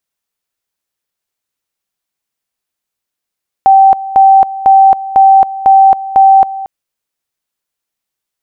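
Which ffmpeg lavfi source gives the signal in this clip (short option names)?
-f lavfi -i "aevalsrc='pow(10,(-1.5-16.5*gte(mod(t,0.5),0.27))/20)*sin(2*PI*776*t)':d=3:s=44100"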